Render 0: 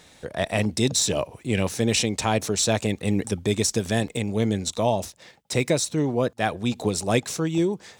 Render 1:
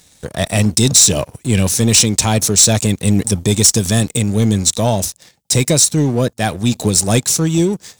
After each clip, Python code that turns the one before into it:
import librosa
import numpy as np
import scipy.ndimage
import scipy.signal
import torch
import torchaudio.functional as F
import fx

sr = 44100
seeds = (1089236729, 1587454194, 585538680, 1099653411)

y = fx.bass_treble(x, sr, bass_db=8, treble_db=14)
y = fx.leveller(y, sr, passes=2)
y = y * 10.0 ** (-2.5 / 20.0)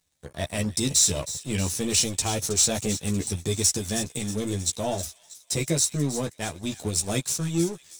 y = fx.echo_wet_highpass(x, sr, ms=318, feedback_pct=59, hz=2000.0, wet_db=-10)
y = fx.power_curve(y, sr, exponent=1.4)
y = fx.chorus_voices(y, sr, voices=6, hz=0.81, base_ms=13, depth_ms=1.8, mix_pct=40)
y = y * 10.0 ** (-6.0 / 20.0)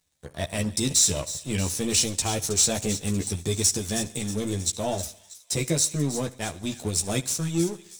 y = fx.echo_feedback(x, sr, ms=70, feedback_pct=52, wet_db=-20.5)